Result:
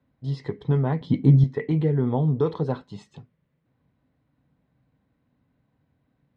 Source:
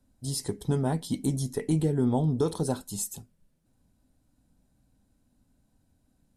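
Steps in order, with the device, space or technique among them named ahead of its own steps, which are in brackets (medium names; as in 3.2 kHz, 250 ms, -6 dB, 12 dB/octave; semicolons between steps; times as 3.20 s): guitar cabinet (cabinet simulation 84–3500 Hz, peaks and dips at 140 Hz +8 dB, 210 Hz -3 dB, 470 Hz +5 dB, 1.1 kHz +7 dB, 2 kHz +9 dB); 1.01–1.44 s: bass shelf 400 Hz +10.5 dB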